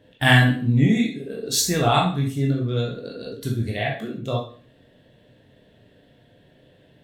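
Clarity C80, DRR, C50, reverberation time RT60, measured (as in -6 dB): 11.0 dB, -2.0 dB, 5.5 dB, 0.45 s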